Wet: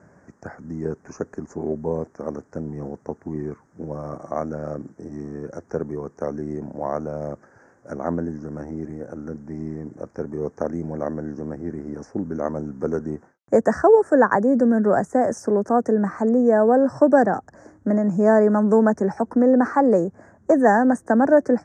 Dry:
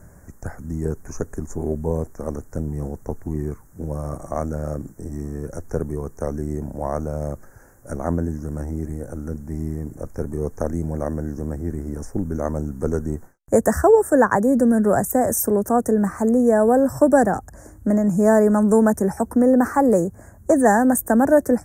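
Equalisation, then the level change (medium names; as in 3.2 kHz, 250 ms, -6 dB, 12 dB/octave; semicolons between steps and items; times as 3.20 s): high-pass 180 Hz 12 dB/octave; low-pass 5.2 kHz 24 dB/octave; 0.0 dB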